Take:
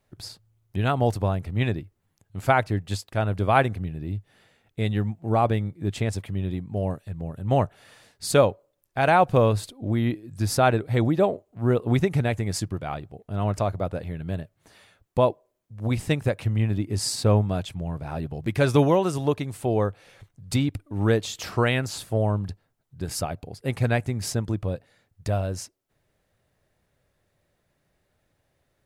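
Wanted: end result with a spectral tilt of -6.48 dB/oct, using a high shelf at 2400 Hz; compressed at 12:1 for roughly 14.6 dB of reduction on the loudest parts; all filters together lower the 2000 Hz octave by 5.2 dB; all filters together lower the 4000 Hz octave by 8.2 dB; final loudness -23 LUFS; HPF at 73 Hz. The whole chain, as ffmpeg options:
-af "highpass=73,equalizer=f=2k:t=o:g=-3.5,highshelf=f=2.4k:g=-6,equalizer=f=4k:t=o:g=-4,acompressor=threshold=-29dB:ratio=12,volume=12.5dB"

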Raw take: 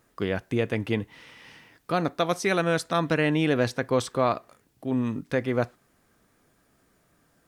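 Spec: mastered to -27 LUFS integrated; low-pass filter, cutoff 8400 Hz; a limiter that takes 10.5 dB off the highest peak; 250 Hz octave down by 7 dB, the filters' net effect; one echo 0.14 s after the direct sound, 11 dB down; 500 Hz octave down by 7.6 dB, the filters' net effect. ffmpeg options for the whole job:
-af "lowpass=8.4k,equalizer=f=250:t=o:g=-7,equalizer=f=500:t=o:g=-7.5,alimiter=level_in=1dB:limit=-24dB:level=0:latency=1,volume=-1dB,aecho=1:1:140:0.282,volume=9dB"

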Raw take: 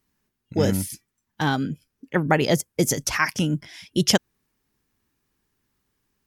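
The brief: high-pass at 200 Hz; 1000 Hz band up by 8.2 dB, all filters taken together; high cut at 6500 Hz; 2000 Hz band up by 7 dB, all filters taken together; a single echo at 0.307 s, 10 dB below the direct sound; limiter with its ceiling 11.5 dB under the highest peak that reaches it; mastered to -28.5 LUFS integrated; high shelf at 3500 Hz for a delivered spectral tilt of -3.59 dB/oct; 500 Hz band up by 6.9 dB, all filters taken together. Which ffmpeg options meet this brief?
-af "highpass=200,lowpass=6.5k,equalizer=f=500:t=o:g=6.5,equalizer=f=1k:t=o:g=7,equalizer=f=2k:t=o:g=5,highshelf=f=3.5k:g=3.5,alimiter=limit=-8dB:level=0:latency=1,aecho=1:1:307:0.316,volume=-5.5dB"

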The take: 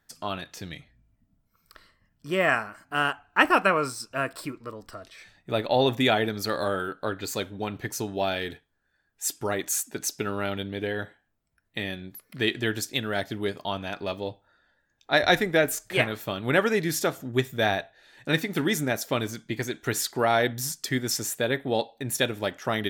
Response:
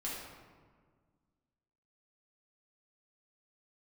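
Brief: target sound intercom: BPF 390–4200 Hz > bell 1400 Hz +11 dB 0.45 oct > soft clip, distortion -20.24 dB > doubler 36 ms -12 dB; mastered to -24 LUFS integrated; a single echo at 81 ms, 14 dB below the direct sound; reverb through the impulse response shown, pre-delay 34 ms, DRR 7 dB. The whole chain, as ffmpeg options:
-filter_complex "[0:a]aecho=1:1:81:0.2,asplit=2[a][b];[1:a]atrim=start_sample=2205,adelay=34[c];[b][c]afir=irnorm=-1:irlink=0,volume=-9dB[d];[a][d]amix=inputs=2:normalize=0,highpass=390,lowpass=4.2k,equalizer=f=1.4k:t=o:w=0.45:g=11,asoftclip=threshold=-6dB,asplit=2[e][f];[f]adelay=36,volume=-12dB[g];[e][g]amix=inputs=2:normalize=0"

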